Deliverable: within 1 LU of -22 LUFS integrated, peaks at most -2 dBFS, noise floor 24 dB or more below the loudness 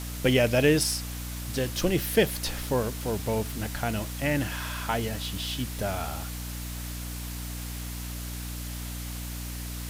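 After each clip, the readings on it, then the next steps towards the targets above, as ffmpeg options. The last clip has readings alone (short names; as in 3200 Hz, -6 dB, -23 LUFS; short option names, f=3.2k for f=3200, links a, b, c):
hum 60 Hz; harmonics up to 300 Hz; hum level -34 dBFS; noise floor -36 dBFS; noise floor target -53 dBFS; loudness -29.0 LUFS; peak -9.0 dBFS; loudness target -22.0 LUFS
-> -af "bandreject=f=60:t=h:w=6,bandreject=f=120:t=h:w=6,bandreject=f=180:t=h:w=6,bandreject=f=240:t=h:w=6,bandreject=f=300:t=h:w=6"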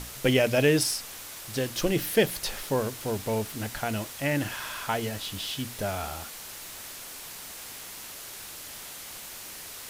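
hum none; noise floor -42 dBFS; noise floor target -54 dBFS
-> -af "afftdn=nr=12:nf=-42"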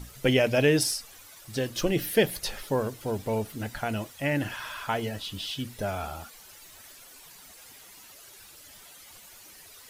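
noise floor -51 dBFS; noise floor target -53 dBFS
-> -af "afftdn=nr=6:nf=-51"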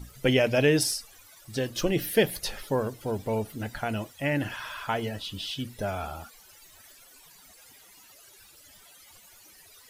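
noise floor -54 dBFS; loudness -28.5 LUFS; peak -9.0 dBFS; loudness target -22.0 LUFS
-> -af "volume=6.5dB"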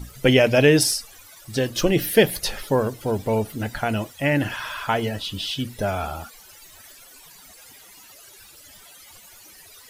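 loudness -22.0 LUFS; peak -2.5 dBFS; noise floor -48 dBFS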